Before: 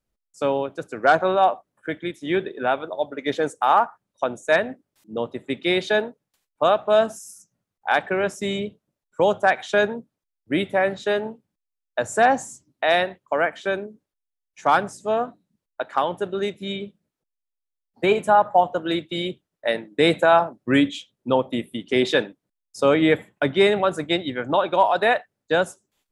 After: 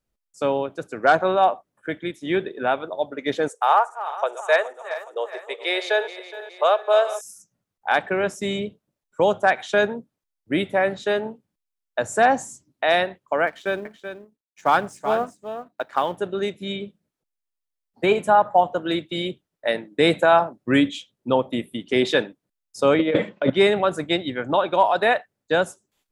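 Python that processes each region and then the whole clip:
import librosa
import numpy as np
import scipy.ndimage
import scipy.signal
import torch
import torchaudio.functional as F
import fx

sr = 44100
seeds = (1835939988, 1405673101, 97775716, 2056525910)

y = fx.chain(x, sr, fx.reverse_delay_fb(ms=209, feedback_pct=69, wet_db=-13),
    fx.steep_highpass(hz=410.0, slope=48), at=(3.48, 7.21))
y = fx.chain(y, sr, fx.law_mismatch(coded='A'),
    fx.echo_single(ms=380, db=-9.5), at=(13.47, 16.17))
y = fx.chain(y, sr, fx.transient(attack_db=6, sustain_db=12),
    fx.over_compress(threshold_db=-19.0, ratio=-0.5),
    fx.cabinet(low_hz=190.0, low_slope=12, high_hz=4800.0, hz=(200.0, 540.0, 780.0, 1700.0), db=(7, 10, -6, -4)), at=(22.99, 23.5))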